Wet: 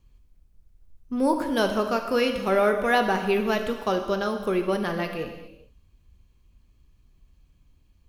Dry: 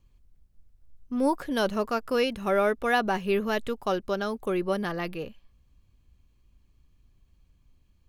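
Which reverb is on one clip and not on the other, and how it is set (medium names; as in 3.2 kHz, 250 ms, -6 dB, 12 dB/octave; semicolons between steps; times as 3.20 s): gated-style reverb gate 450 ms falling, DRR 5 dB; trim +2 dB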